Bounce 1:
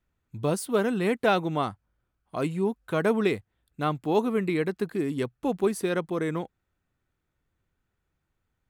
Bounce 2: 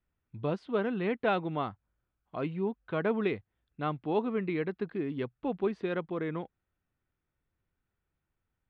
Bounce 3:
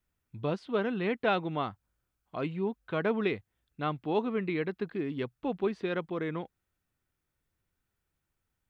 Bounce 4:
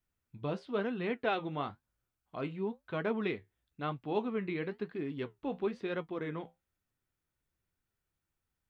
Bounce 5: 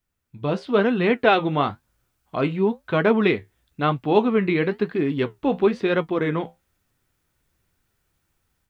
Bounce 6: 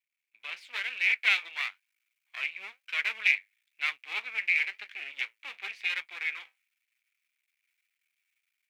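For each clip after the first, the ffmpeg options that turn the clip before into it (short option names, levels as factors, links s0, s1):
-af "lowpass=f=3500:w=0.5412,lowpass=f=3500:w=1.3066,volume=0.531"
-af "highshelf=f=3100:g=7.5"
-af "flanger=delay=7.4:depth=7.4:regen=-60:speed=1:shape=sinusoidal"
-af "dynaudnorm=f=320:g=3:m=3.16,volume=1.78"
-af "aeval=exprs='max(val(0),0)':c=same,highpass=f=2300:t=q:w=7.6,volume=0.473"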